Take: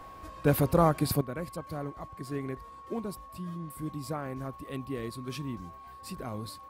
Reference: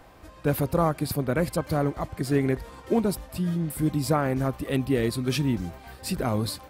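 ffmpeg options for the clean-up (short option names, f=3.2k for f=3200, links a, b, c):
-af "bandreject=f=1.1k:w=30,asetnsamples=n=441:p=0,asendcmd='1.21 volume volume 12dB',volume=0dB"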